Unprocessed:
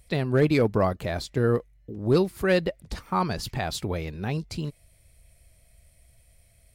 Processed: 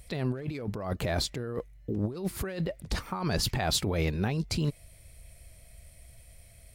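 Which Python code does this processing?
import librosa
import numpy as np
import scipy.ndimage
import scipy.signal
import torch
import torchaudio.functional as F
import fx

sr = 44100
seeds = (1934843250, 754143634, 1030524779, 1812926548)

y = fx.over_compress(x, sr, threshold_db=-31.0, ratio=-1.0)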